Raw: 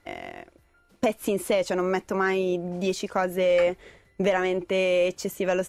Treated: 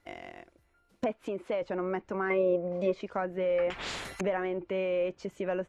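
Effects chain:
treble cut that deepens with the level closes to 2,000 Hz, closed at −23 dBFS
0:01.12–0:01.62: low-shelf EQ 210 Hz −9 dB
0:02.30–0:03.01: hollow resonant body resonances 550/1,100/2,100 Hz, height 14 dB, ringing for 30 ms
0:03.70–0:04.21: every bin compressed towards the loudest bin 10 to 1
level −7 dB

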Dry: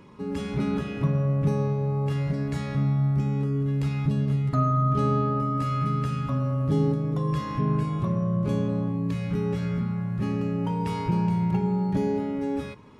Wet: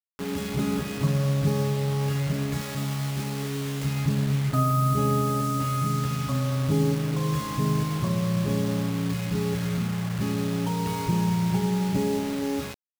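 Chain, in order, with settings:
high-pass filter 40 Hz 12 dB per octave
bit-depth reduction 6 bits, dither none
0:02.61–0:03.85: bass and treble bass −7 dB, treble +3 dB

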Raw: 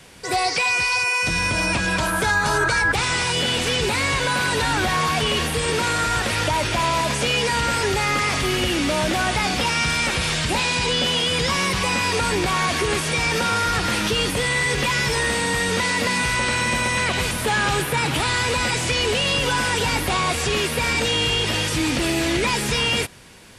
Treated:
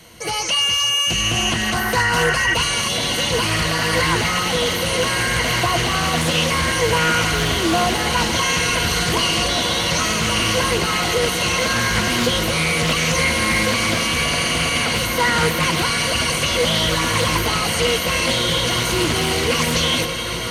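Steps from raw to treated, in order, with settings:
change of speed 1.15×
EQ curve with evenly spaced ripples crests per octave 1.9, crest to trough 11 dB
feedback delay with all-pass diffusion 1,735 ms, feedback 73%, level −7.5 dB
highs frequency-modulated by the lows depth 0.23 ms

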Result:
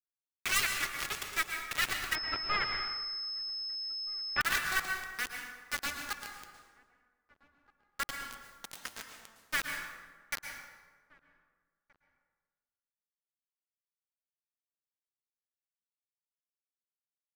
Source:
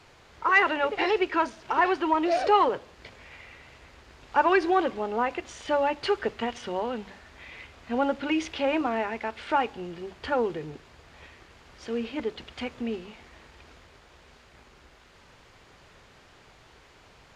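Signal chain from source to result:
phase distortion by the signal itself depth 0.6 ms
low-pass that shuts in the quiet parts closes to 1,300 Hz, open at −22.5 dBFS
Chebyshev band-stop filter 200–1,200 Hz, order 4
high-shelf EQ 2,000 Hz −9.5 dB
bit reduction 5 bits
slap from a distant wall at 270 metres, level −23 dB
dense smooth reverb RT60 1.4 s, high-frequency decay 0.6×, pre-delay 100 ms, DRR 3.5 dB
0:02.15–0:04.41: switching amplifier with a slow clock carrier 5,200 Hz
level −2 dB

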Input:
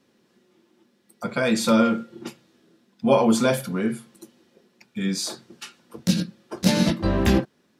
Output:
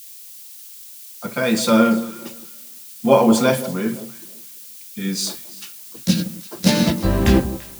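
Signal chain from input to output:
background noise blue −40 dBFS
delay that swaps between a low-pass and a high-pass 170 ms, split 1,000 Hz, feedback 51%, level −11 dB
multiband upward and downward expander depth 40%
level +2.5 dB

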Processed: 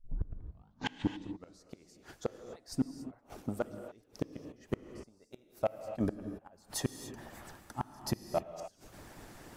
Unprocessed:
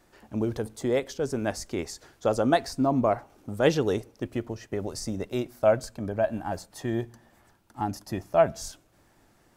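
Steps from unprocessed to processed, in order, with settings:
turntable start at the beginning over 1.76 s
reversed playback
downward compressor 16 to 1, threshold −34 dBFS, peak gain reduction 20 dB
reversed playback
gate with flip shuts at −31 dBFS, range −35 dB
harmonic and percussive parts rebalanced harmonic −9 dB
hard clipping −34 dBFS, distortion −22 dB
on a send: convolution reverb, pre-delay 3 ms, DRR 9 dB
on the sum: level +13 dB

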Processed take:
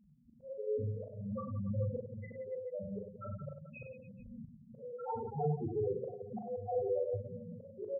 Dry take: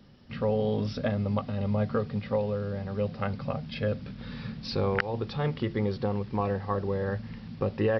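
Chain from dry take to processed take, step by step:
spectral magnitudes quantised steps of 15 dB
dynamic equaliser 690 Hz, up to +4 dB, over −41 dBFS, Q 0.74
low-pass filter sweep 2,300 Hz → 820 Hz, 0:03.98–0:05.36
spectral peaks only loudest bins 1
volume swells 405 ms
on a send: reverse bouncing-ball delay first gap 40 ms, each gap 1.4×, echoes 5
on the sum: level −1 dB

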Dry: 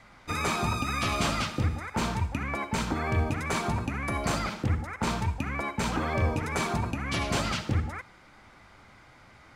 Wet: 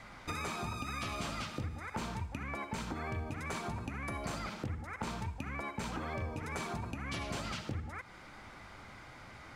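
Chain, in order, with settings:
downward compressor 4 to 1, threshold −41 dBFS, peak gain reduction 16.5 dB
level +2.5 dB

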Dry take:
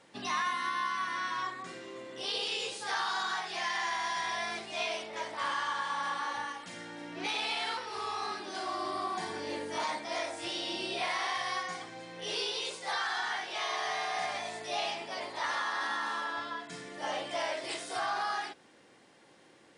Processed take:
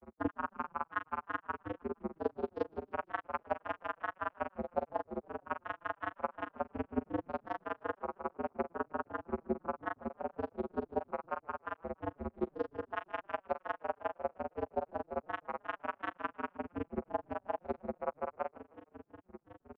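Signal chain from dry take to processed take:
low-pass filter 1,300 Hz 24 dB per octave
notch filter 530 Hz
downward compressor 6 to 1, threshold −43 dBFS, peak gain reduction 11.5 dB
granular cloud 47 ms, grains 20 per second, pitch spread up and down by 0 semitones
channel vocoder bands 8, square 86 Hz
granular cloud 135 ms, grains 5.5 per second, spray 34 ms, pitch spread up and down by 3 semitones
echo with shifted repeats 155 ms, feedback 44%, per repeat −40 Hz, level −21 dB
level +17.5 dB

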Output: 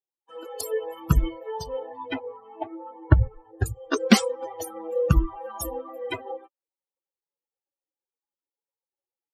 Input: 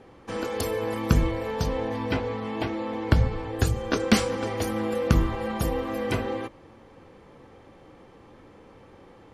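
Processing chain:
spectral dynamics exaggerated over time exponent 3
0:02.19–0:03.66: low-pass filter 1,700 Hz 12 dB per octave
0:05.35–0:05.89: comb filter 3.3 ms, depth 87%
level +7 dB

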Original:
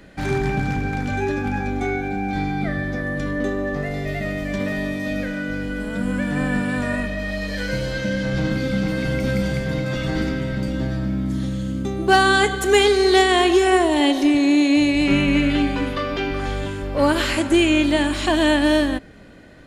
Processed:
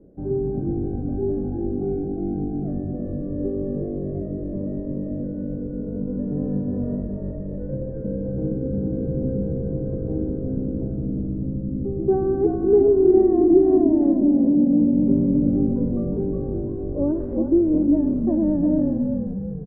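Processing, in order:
transistor ladder low-pass 510 Hz, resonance 45%
echo with shifted repeats 360 ms, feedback 52%, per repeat −53 Hz, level −4 dB
level +3 dB

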